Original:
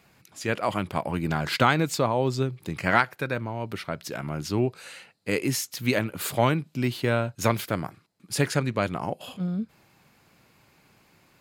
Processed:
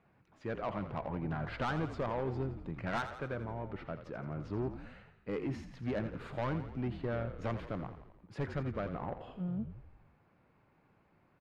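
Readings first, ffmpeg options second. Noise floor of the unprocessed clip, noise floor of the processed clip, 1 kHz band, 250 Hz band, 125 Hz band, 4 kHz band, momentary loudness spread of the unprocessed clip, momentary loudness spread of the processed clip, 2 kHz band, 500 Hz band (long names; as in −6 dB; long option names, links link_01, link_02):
−62 dBFS, −70 dBFS, −13.0 dB, −10.5 dB, −10.0 dB, −20.0 dB, 11 LU, 8 LU, −15.5 dB, −11.0 dB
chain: -filter_complex "[0:a]lowpass=1500,asoftclip=type=tanh:threshold=-21.5dB,asplit=8[link_01][link_02][link_03][link_04][link_05][link_06][link_07][link_08];[link_02]adelay=85,afreqshift=-47,volume=-10.5dB[link_09];[link_03]adelay=170,afreqshift=-94,volume=-14.9dB[link_10];[link_04]adelay=255,afreqshift=-141,volume=-19.4dB[link_11];[link_05]adelay=340,afreqshift=-188,volume=-23.8dB[link_12];[link_06]adelay=425,afreqshift=-235,volume=-28.2dB[link_13];[link_07]adelay=510,afreqshift=-282,volume=-32.7dB[link_14];[link_08]adelay=595,afreqshift=-329,volume=-37.1dB[link_15];[link_01][link_09][link_10][link_11][link_12][link_13][link_14][link_15]amix=inputs=8:normalize=0,volume=-7.5dB"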